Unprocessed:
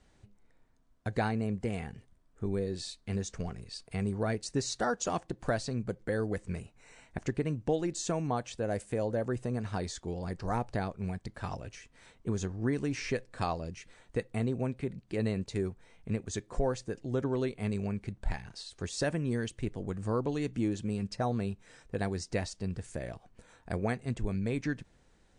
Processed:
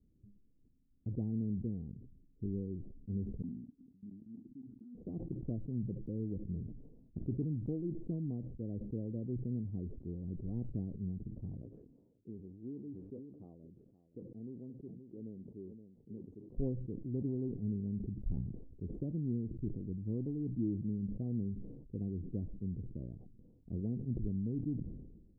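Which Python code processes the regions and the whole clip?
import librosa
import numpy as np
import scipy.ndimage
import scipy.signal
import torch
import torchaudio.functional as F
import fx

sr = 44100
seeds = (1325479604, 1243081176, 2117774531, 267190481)

y = fx.chain(x, sr, fx.double_bandpass(hz=600.0, octaves=2.5),
    fx.level_steps(step_db=22), at=(3.42, 4.95))
y = fx.chain(y, sr, fx.highpass(hz=720.0, slope=6),
    fx.echo_single(ms=521, db=-15.0), at=(11.62, 16.5))
y = scipy.signal.sosfilt(scipy.signal.cheby2(4, 80, 1900.0, 'lowpass', fs=sr, output='sos'), y)
y = fx.low_shelf(y, sr, hz=93.0, db=-5.0)
y = fx.sustainer(y, sr, db_per_s=48.0)
y = y * librosa.db_to_amplitude(-2.0)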